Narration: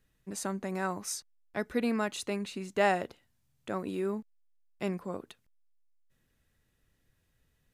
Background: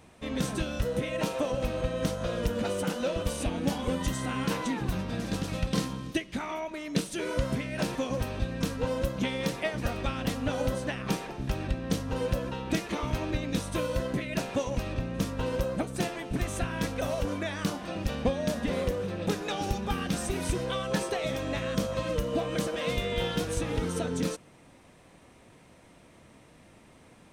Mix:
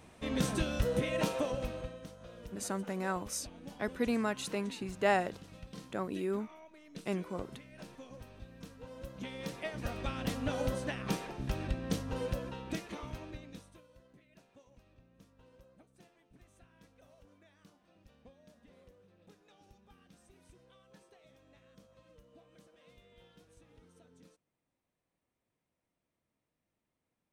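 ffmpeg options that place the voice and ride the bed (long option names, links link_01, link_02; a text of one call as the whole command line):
ffmpeg -i stem1.wav -i stem2.wav -filter_complex "[0:a]adelay=2250,volume=-2dB[link_01];[1:a]volume=13.5dB,afade=type=out:start_time=1.19:duration=0.83:silence=0.125893,afade=type=in:start_time=8.9:duration=1.46:silence=0.177828,afade=type=out:start_time=11.85:duration=1.97:silence=0.0446684[link_02];[link_01][link_02]amix=inputs=2:normalize=0" out.wav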